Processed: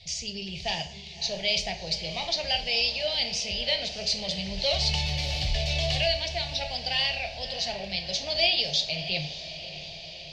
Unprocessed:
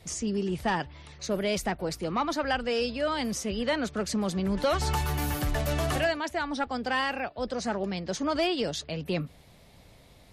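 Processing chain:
drawn EQ curve 110 Hz 0 dB, 170 Hz −7 dB, 280 Hz −22 dB, 700 Hz −1 dB, 1,300 Hz −25 dB, 2,300 Hz +6 dB, 4,700 Hz +13 dB, 12,000 Hz −27 dB
feedback delay with all-pass diffusion 621 ms, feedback 64%, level −12.5 dB
dense smooth reverb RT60 0.53 s, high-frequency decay 0.75×, DRR 5.5 dB

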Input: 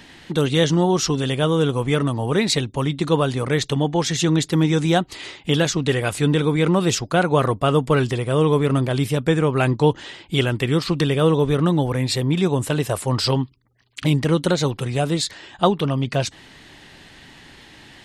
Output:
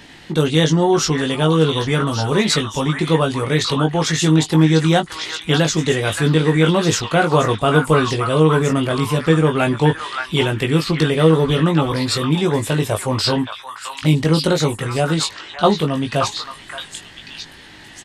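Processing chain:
double-tracking delay 19 ms −5 dB
echo through a band-pass that steps 574 ms, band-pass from 1,400 Hz, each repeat 1.4 octaves, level −0.5 dB
level +1.5 dB

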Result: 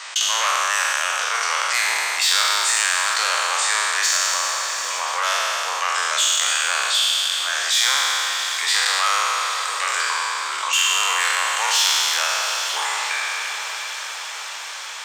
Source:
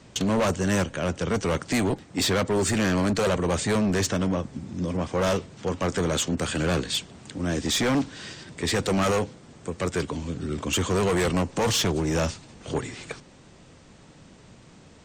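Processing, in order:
peak hold with a decay on every bin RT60 2.20 s
high-pass filter 1,000 Hz 24 dB per octave
high-shelf EQ 12,000 Hz −5 dB
on a send: feedback delay with all-pass diffusion 751 ms, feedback 49%, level −14.5 dB
on the sum: envelope flattener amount 50%
level +3 dB

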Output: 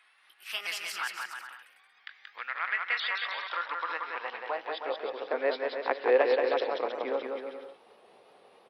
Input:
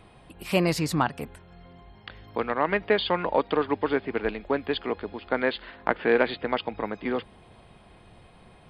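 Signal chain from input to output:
pitch shifter swept by a sawtooth +3 semitones, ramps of 333 ms
high-pass filter sweep 1,700 Hz → 460 Hz, 0:03.33–0:05.27
bouncing-ball delay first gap 180 ms, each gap 0.75×, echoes 5
level −6.5 dB

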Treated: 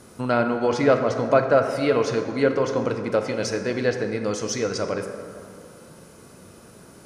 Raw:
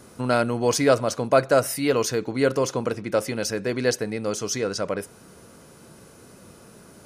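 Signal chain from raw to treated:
treble cut that deepens with the level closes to 2,700 Hz, closed at −17 dBFS
dense smooth reverb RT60 2.4 s, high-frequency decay 0.45×, DRR 5.5 dB

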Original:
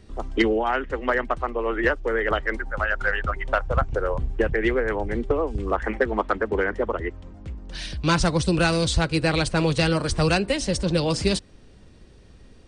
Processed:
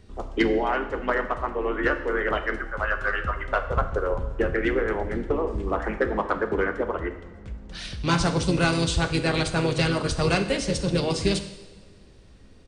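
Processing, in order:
coupled-rooms reverb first 0.95 s, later 2.9 s, DRR 7 dB
pitch-shifted copies added −4 semitones −8 dB
level −3 dB

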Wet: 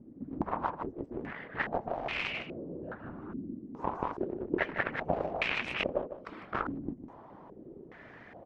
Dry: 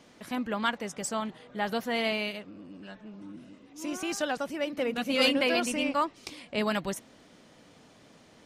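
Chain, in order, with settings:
downward compressor 6 to 1, threshold −34 dBFS, peak gain reduction 14 dB
random phases in short frames
harmonic generator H 7 −11 dB, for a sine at −21.5 dBFS
on a send: single-tap delay 153 ms −11 dB
on the sum: low-pass on a step sequencer 2.4 Hz 280–2,500 Hz
level +2.5 dB

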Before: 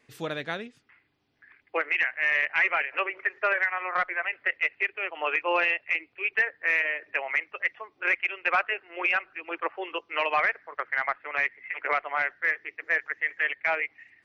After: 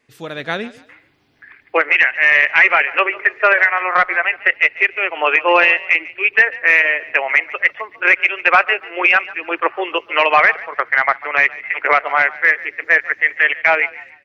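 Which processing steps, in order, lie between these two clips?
automatic gain control gain up to 13 dB
on a send: echo with shifted repeats 144 ms, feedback 32%, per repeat +35 Hz, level −19 dB
on the sum: level +1 dB

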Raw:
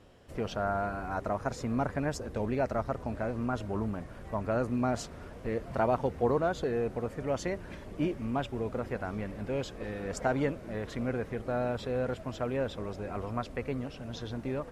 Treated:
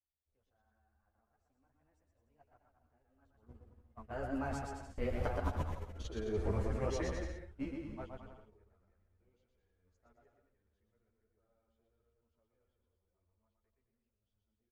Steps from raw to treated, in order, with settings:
source passing by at 0:05.81, 30 m/s, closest 1.6 metres
low shelf with overshoot 100 Hz +10.5 dB, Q 1.5
noise gate −60 dBFS, range −29 dB
compressor whose output falls as the input rises −52 dBFS, ratio −0.5
on a send: bouncing-ball delay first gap 120 ms, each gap 0.8×, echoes 5
on the sum: string-ensemble chorus
level +14 dB

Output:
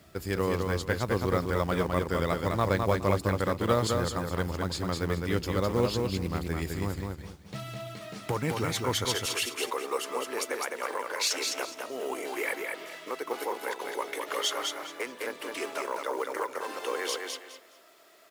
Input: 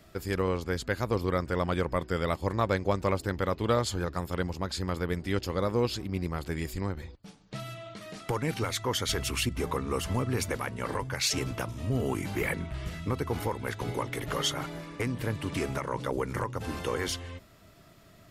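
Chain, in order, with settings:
high-pass filter 48 Hz 24 dB per octave, from 0:09.05 380 Hz
log-companded quantiser 6 bits
repeating echo 208 ms, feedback 24%, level −4 dB

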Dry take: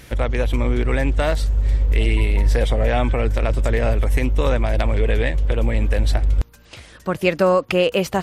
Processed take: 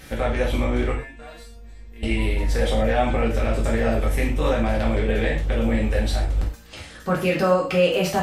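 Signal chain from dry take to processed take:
brickwall limiter −12 dBFS, peak gain reduction 7.5 dB
0:00.92–0:02.03: resonators tuned to a chord A#3 fifth, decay 0.26 s
reverb whose tail is shaped and stops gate 150 ms falling, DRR −4.5 dB
level −3.5 dB

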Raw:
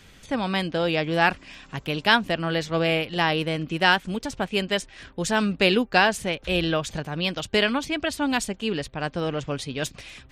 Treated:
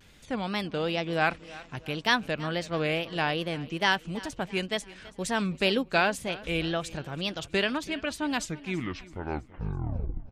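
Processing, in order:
turntable brake at the end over 2.07 s
tape wow and flutter 140 cents
repeating echo 329 ms, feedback 46%, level −19.5 dB
level −5.5 dB

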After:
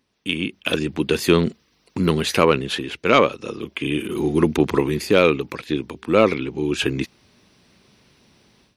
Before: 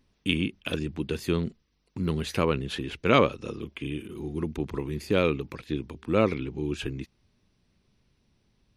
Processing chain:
high-pass filter 310 Hz 6 dB per octave
automatic gain control gain up to 15.5 dB
soft clipping −2 dBFS, distortion −24 dB
level +2.5 dB

